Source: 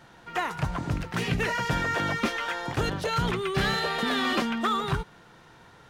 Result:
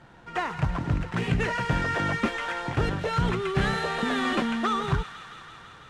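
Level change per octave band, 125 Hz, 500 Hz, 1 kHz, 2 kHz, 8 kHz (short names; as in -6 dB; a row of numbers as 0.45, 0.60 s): +3.0, +0.5, 0.0, -0.5, -3.5 dB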